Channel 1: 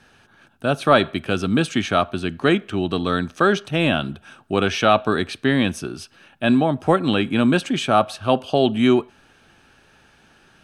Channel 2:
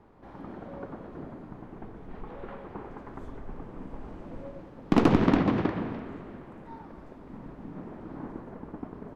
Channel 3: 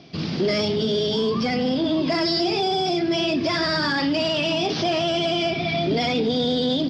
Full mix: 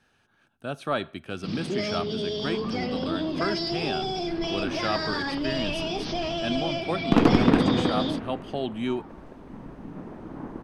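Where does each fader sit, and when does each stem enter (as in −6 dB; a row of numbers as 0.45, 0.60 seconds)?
−12.5, +2.0, −7.5 decibels; 0.00, 2.20, 1.30 seconds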